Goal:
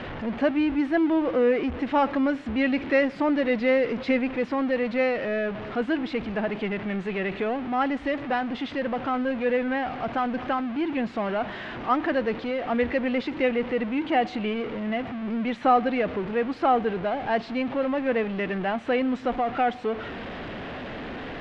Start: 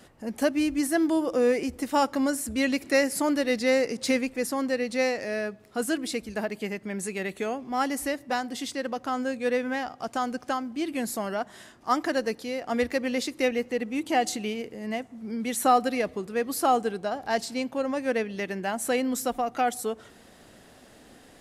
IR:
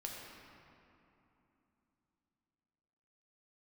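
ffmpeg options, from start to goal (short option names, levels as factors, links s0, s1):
-af "aeval=exprs='val(0)+0.5*0.0355*sgn(val(0))':c=same,lowpass=f=3000:w=0.5412,lowpass=f=3000:w=1.3066"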